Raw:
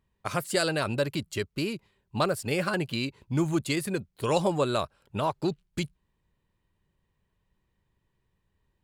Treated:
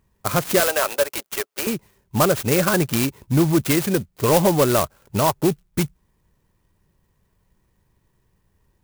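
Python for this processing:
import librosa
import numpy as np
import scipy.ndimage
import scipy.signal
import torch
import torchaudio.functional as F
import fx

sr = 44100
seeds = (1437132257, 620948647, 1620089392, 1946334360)

p1 = fx.highpass(x, sr, hz=500.0, slope=24, at=(0.6, 1.67))
p2 = 10.0 ** (-22.5 / 20.0) * (np.abs((p1 / 10.0 ** (-22.5 / 20.0) + 3.0) % 4.0 - 2.0) - 1.0)
p3 = p1 + (p2 * 10.0 ** (-8.0 / 20.0))
p4 = fx.clock_jitter(p3, sr, seeds[0], jitter_ms=0.074)
y = p4 * 10.0 ** (7.0 / 20.0)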